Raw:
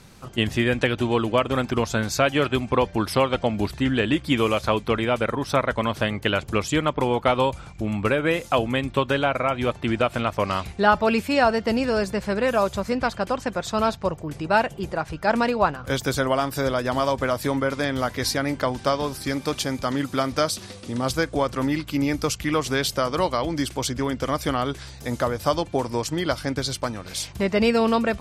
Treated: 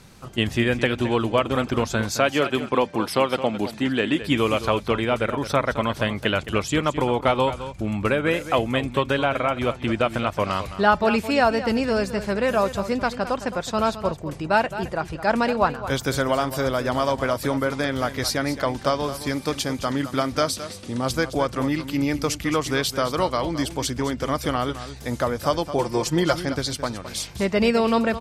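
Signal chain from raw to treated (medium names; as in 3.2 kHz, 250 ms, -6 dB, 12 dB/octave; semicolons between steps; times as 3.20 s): 2.11–4.22 s: high-pass 170 Hz 12 dB/octave; 25.78–26.40 s: comb 5.7 ms, depth 96%; on a send: delay 216 ms -12.5 dB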